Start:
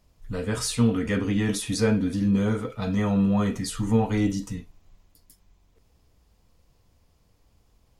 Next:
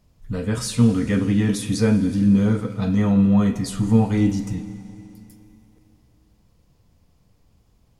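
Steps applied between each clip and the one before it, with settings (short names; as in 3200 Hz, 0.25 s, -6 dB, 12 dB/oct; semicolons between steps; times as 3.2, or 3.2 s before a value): bell 150 Hz +7 dB 2 oct; Schroeder reverb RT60 3.2 s, combs from 32 ms, DRR 12.5 dB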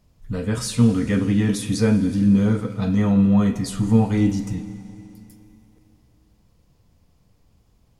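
nothing audible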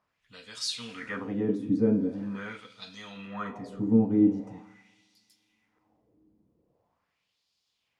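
LFO band-pass sine 0.43 Hz 300–4300 Hz; gain +2 dB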